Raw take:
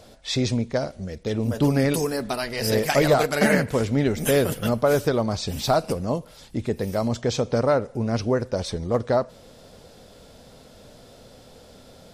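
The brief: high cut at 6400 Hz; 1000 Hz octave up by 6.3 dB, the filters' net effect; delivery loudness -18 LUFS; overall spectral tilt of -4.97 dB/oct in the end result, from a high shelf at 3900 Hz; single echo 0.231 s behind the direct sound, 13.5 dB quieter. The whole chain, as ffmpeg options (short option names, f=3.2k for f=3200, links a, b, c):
-af "lowpass=6.4k,equalizer=f=1k:t=o:g=8.5,highshelf=f=3.9k:g=8.5,aecho=1:1:231:0.211,volume=3dB"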